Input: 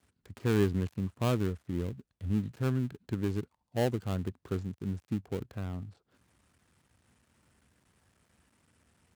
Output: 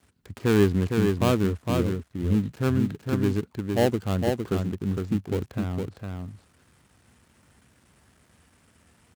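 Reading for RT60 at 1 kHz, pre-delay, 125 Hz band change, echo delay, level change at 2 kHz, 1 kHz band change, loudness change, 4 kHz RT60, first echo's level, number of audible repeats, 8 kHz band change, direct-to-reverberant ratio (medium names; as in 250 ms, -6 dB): no reverb, no reverb, +6.5 dB, 459 ms, +9.0 dB, +9.0 dB, +8.0 dB, no reverb, -4.5 dB, 1, +9.0 dB, no reverb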